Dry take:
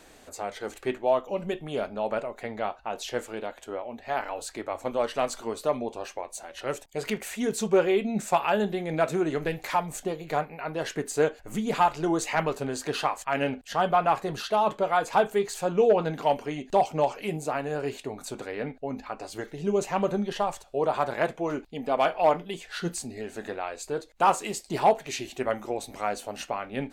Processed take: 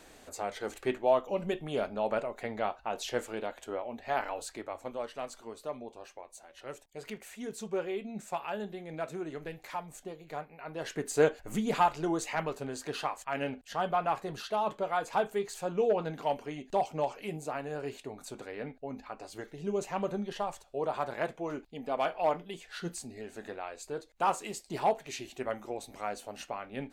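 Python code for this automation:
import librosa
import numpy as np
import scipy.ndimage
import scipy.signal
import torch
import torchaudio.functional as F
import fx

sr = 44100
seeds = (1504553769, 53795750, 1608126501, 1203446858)

y = fx.gain(x, sr, db=fx.line((4.25, -2.0), (5.13, -12.0), (10.49, -12.0), (11.28, 0.0), (12.39, -7.0)))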